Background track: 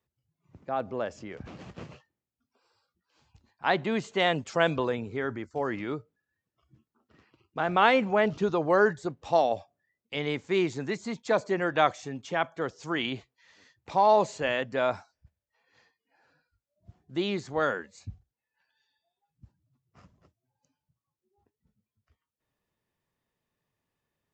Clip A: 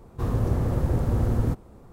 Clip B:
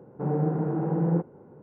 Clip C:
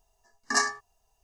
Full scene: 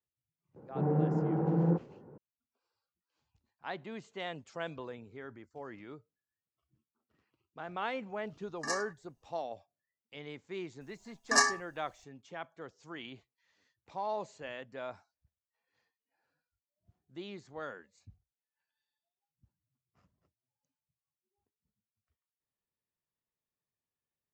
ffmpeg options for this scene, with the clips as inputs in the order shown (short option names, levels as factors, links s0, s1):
-filter_complex "[3:a]asplit=2[s0][s1];[0:a]volume=0.178[s2];[2:a]atrim=end=1.62,asetpts=PTS-STARTPTS,volume=0.668,afade=t=in:d=0.004:c=hsin,afade=t=out:st=1.616:d=0.004:c=hsin,adelay=560[s3];[s0]atrim=end=1.23,asetpts=PTS-STARTPTS,volume=0.266,afade=t=in:d=0.004:c=hsin,afade=t=out:st=1.226:d=0.004:c=hsin,adelay=8130[s4];[s1]atrim=end=1.23,asetpts=PTS-STARTPTS,volume=0.944,afade=t=in:d=0.004:c=hsin,afade=t=out:st=1.226:d=0.004:c=hsin,adelay=10810[s5];[s2][s3][s4][s5]amix=inputs=4:normalize=0"